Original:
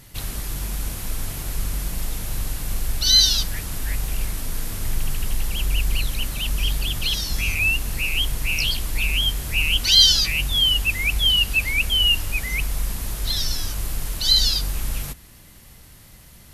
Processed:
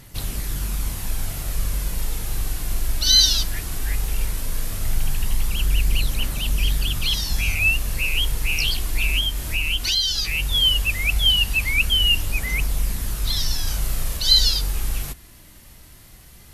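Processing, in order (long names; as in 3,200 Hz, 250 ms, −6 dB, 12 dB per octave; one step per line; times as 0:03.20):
0:09.19–0:10.52: downward compressor 6 to 1, threshold −19 dBFS, peak gain reduction 10.5 dB
phase shifter 0.16 Hz, delay 3.3 ms, feedback 25%
0:13.63–0:14.17: double-tracking delay 37 ms −3 dB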